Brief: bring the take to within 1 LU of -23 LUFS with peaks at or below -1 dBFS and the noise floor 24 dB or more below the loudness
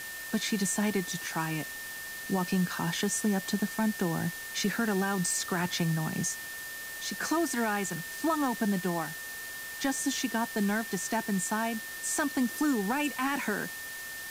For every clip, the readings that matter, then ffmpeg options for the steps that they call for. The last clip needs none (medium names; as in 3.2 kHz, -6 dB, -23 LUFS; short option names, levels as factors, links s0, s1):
steady tone 1.8 kHz; tone level -40 dBFS; noise floor -41 dBFS; noise floor target -55 dBFS; loudness -31.0 LUFS; peak level -17.5 dBFS; loudness target -23.0 LUFS
-> -af "bandreject=f=1800:w=30"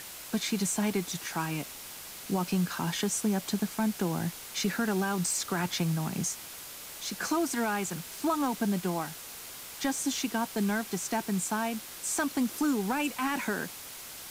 steady tone not found; noise floor -44 dBFS; noise floor target -56 dBFS
-> -af "afftdn=nr=12:nf=-44"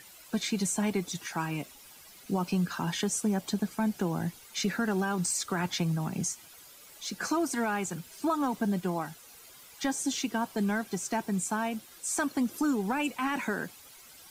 noise floor -53 dBFS; noise floor target -55 dBFS
-> -af "afftdn=nr=6:nf=-53"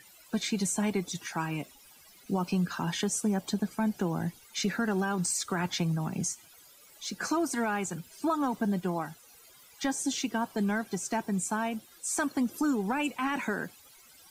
noise floor -56 dBFS; loudness -31.5 LUFS; peak level -19.0 dBFS; loudness target -23.0 LUFS
-> -af "volume=2.66"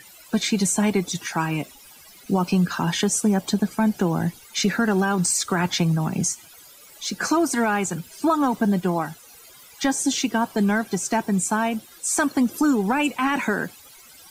loudness -23.0 LUFS; peak level -10.5 dBFS; noise floor -48 dBFS